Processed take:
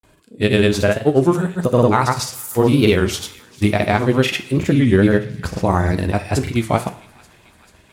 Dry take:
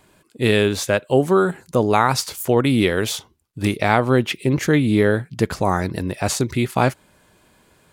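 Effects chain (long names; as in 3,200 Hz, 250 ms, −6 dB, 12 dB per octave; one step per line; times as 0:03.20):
low-shelf EQ 180 Hz +6.5 dB
in parallel at −8.5 dB: gain into a clipping stage and back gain 8.5 dB
on the sum: granular cloud 100 ms, pitch spread up and down by 0 semitones
on a send: delay with a high-pass on its return 440 ms, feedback 74%, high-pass 1,800 Hz, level −21.5 dB
on the sum: coupled-rooms reverb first 0.5 s, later 2.1 s, from −21 dB, DRR 8.5 dB
wow of a warped record 33 1/3 rpm, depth 160 cents
level −1 dB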